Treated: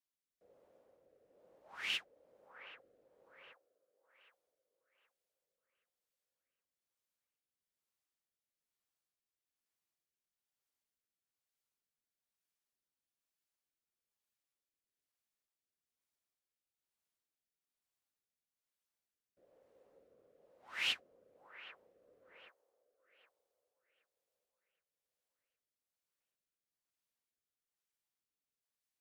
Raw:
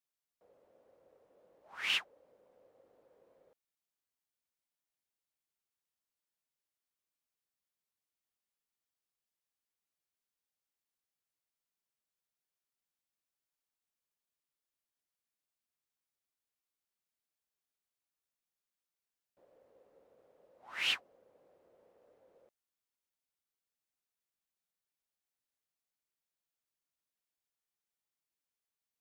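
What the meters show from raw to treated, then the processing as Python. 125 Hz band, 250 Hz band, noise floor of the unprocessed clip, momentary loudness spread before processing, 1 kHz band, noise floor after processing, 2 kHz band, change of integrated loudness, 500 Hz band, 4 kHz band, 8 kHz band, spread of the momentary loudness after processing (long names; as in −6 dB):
can't be measured, −2.0 dB, below −85 dBFS, 13 LU, −4.0 dB, below −85 dBFS, −3.5 dB, −5.5 dB, −2.0 dB, −3.5 dB, −4.0 dB, 20 LU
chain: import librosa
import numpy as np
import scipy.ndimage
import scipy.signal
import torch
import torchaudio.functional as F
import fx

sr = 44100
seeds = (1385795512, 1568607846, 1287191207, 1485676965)

y = fx.echo_wet_bandpass(x, sr, ms=770, feedback_pct=40, hz=840.0, wet_db=-9.5)
y = fx.rotary(y, sr, hz=1.1)
y = fx.end_taper(y, sr, db_per_s=440.0)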